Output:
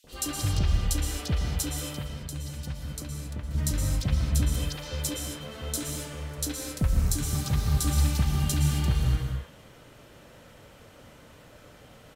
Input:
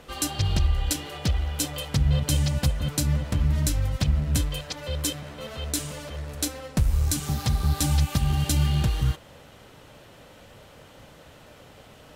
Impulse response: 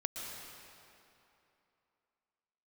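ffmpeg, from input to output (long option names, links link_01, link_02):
-filter_complex "[0:a]asettb=1/sr,asplit=3[link_01][link_02][link_03];[link_01]atrim=end=1.704[link_04];[link_02]atrim=start=1.7:end=3.51,asetpts=PTS-STARTPTS,afade=type=in:duration=0.004:curve=qsin,afade=type=out:start_time=1.806:duration=0.004:curve=qsin,acompressor=threshold=-31dB:ratio=6[link_05];[link_03]atrim=start=3.506[link_06];[link_04][link_05]acrossfade=duration=0.004:curve1=hsin:curve2=qsin[link_07];[link_07][link_06]acrossfade=duration=0.004:curve1=qsin:curve2=hsin,acrossover=split=750|3400[link_08][link_09][link_10];[link_08]adelay=40[link_11];[link_09]adelay=70[link_12];[link_11][link_12][link_10]amix=inputs=3:normalize=0[link_13];[1:a]atrim=start_sample=2205,afade=type=out:start_time=0.33:duration=0.01,atrim=end_sample=14994[link_14];[link_13][link_14]afir=irnorm=-1:irlink=0,volume=-1.5dB"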